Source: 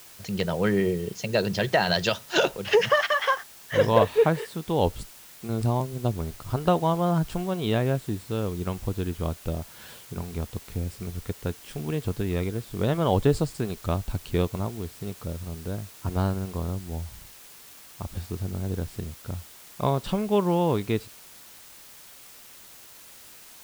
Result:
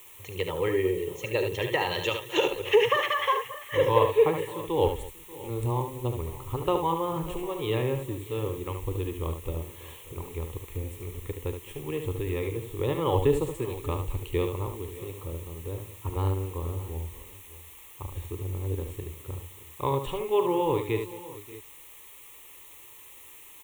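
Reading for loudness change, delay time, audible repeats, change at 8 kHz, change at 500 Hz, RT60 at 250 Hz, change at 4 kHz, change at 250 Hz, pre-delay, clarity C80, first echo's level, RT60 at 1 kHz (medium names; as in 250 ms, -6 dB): -2.0 dB, 42 ms, 5, -3.5 dB, -1.0 dB, no reverb, -3.0 dB, -6.0 dB, no reverb, no reverb, -15.5 dB, no reverb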